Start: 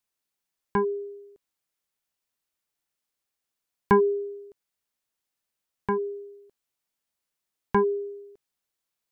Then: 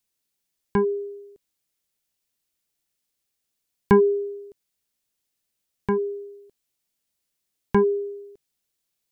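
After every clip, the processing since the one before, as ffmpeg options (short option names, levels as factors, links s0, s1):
-af "equalizer=f=1100:t=o:w=2:g=-8,volume=2"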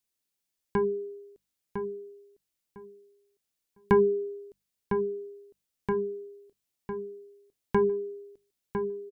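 -filter_complex "[0:a]bandreject=f=50:t=h:w=6,bandreject=f=100:t=h:w=6,bandreject=f=150:t=h:w=6,bandreject=f=200:t=h:w=6,asplit=2[s0][s1];[s1]adelay=1004,lowpass=f=2600:p=1,volume=0.447,asplit=2[s2][s3];[s3]adelay=1004,lowpass=f=2600:p=1,volume=0.2,asplit=2[s4][s5];[s5]adelay=1004,lowpass=f=2600:p=1,volume=0.2[s6];[s0][s2][s4][s6]amix=inputs=4:normalize=0,volume=0.596"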